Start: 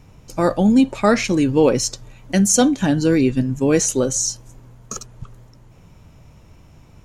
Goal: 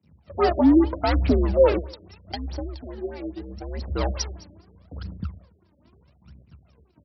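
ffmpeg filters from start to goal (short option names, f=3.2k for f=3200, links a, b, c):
-filter_complex "[0:a]aeval=exprs='if(lt(val(0),0),0.251*val(0),val(0))':c=same,agate=range=-33dB:threshold=-39dB:ratio=3:detection=peak,equalizer=f=4.7k:w=2.3:g=11,asettb=1/sr,asplit=3[a][b][c];[a]atrim=end=1.844[d];[b]atrim=start=1.84:end=3.88,asetpts=PTS-STARTPTS,afade=t=in:d=0.004:c=qsin,afade=t=out:st=2.036:d=0.004:c=qsin,acompressor=threshold=-31dB:ratio=12[e];[c]atrim=start=3.876[f];[d][e]acrossfade=d=0.004:c1=hsin:c2=qsin[g];[g][f]acrossfade=d=0.004:c1=qsin:c2=hsin,asoftclip=type=tanh:threshold=-15.5dB,afreqshift=65,aphaser=in_gain=1:out_gain=1:delay=3.6:decay=0.73:speed=0.78:type=triangular,aecho=1:1:143|286:0.075|0.027,afftfilt=real='re*lt(b*sr/1024,630*pow(5900/630,0.5+0.5*sin(2*PI*4.8*pts/sr)))':imag='im*lt(b*sr/1024,630*pow(5900/630,0.5+0.5*sin(2*PI*4.8*pts/sr)))':win_size=1024:overlap=0.75"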